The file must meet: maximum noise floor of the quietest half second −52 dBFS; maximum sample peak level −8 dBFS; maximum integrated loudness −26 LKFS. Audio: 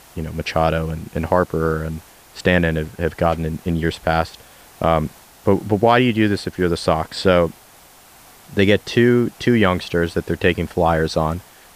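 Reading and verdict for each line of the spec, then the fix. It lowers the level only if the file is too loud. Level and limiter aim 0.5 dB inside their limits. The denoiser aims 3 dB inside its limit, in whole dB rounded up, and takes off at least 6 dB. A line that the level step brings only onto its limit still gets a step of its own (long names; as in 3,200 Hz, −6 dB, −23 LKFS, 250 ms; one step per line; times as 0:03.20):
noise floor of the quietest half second −47 dBFS: out of spec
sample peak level −2.0 dBFS: out of spec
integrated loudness −19.0 LKFS: out of spec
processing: level −7.5 dB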